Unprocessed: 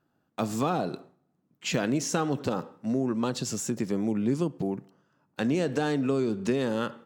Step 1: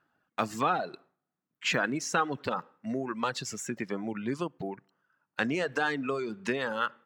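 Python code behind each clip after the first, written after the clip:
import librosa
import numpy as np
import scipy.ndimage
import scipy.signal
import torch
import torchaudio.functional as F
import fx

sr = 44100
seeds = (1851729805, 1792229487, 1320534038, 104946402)

y = fx.dereverb_blind(x, sr, rt60_s=1.7)
y = fx.peak_eq(y, sr, hz=1700.0, db=14.5, octaves=2.4)
y = F.gain(torch.from_numpy(y), -6.5).numpy()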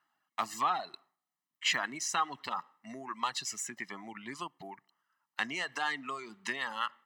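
y = fx.highpass(x, sr, hz=1300.0, slope=6)
y = y + 0.69 * np.pad(y, (int(1.0 * sr / 1000.0), 0))[:len(y)]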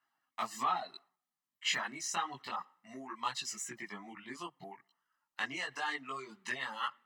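y = fx.chorus_voices(x, sr, voices=6, hz=0.56, base_ms=19, depth_ms=4.4, mix_pct=55)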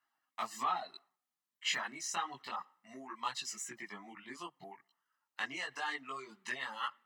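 y = fx.low_shelf(x, sr, hz=130.0, db=-8.5)
y = F.gain(torch.from_numpy(y), -1.5).numpy()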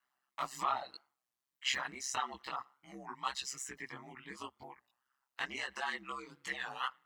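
y = x * np.sin(2.0 * np.pi * 66.0 * np.arange(len(x)) / sr)
y = fx.record_warp(y, sr, rpm=33.33, depth_cents=160.0)
y = F.gain(torch.from_numpy(y), 3.0).numpy()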